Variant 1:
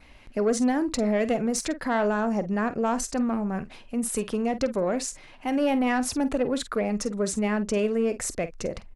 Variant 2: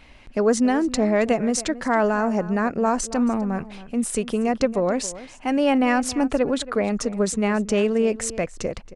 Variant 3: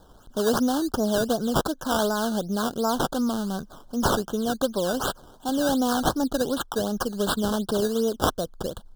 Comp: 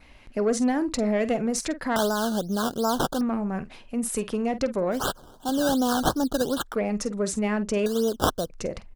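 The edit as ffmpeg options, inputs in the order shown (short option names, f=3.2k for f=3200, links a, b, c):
-filter_complex "[2:a]asplit=3[a][b][c];[0:a]asplit=4[d][e][f][g];[d]atrim=end=1.962[h];[a]atrim=start=1.958:end=3.212[i];[e]atrim=start=3.208:end=5.01[j];[b]atrim=start=4.91:end=6.76[k];[f]atrim=start=6.66:end=7.862[l];[c]atrim=start=7.858:end=8.502[m];[g]atrim=start=8.498[n];[h][i]acrossfade=d=0.004:c1=hsin:c2=hsin[o];[o][j]acrossfade=d=0.004:c1=hsin:c2=hsin[p];[p][k]acrossfade=d=0.1:c1=tri:c2=tri[q];[q][l]acrossfade=d=0.1:c1=tri:c2=tri[r];[r][m]acrossfade=d=0.004:c1=hsin:c2=hsin[s];[s][n]acrossfade=d=0.004:c1=hsin:c2=hsin"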